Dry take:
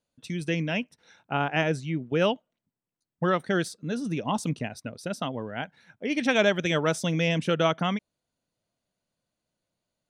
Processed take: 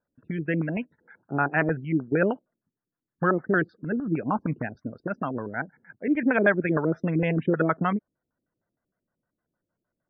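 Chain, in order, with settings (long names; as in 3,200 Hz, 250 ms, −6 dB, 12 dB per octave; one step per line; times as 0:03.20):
0:04.65–0:05.23: phase distortion by the signal itself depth 0.078 ms
auto-filter low-pass square 6.5 Hz 350–1,600 Hz
spectral peaks only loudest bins 64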